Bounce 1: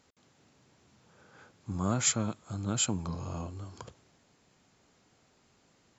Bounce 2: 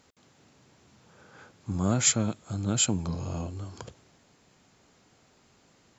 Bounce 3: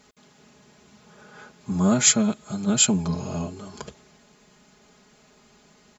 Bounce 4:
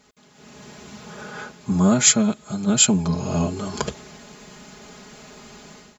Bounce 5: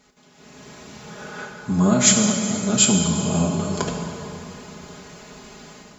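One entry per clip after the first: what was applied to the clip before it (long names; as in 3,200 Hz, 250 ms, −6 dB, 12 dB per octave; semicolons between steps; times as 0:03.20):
dynamic equaliser 1,100 Hz, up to −6 dB, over −56 dBFS, Q 2.1; level +4.5 dB
comb filter 4.8 ms, depth 99%; level +3 dB
automatic gain control gain up to 14 dB; level −1 dB
dense smooth reverb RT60 3.4 s, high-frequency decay 0.7×, DRR 1.5 dB; level −1 dB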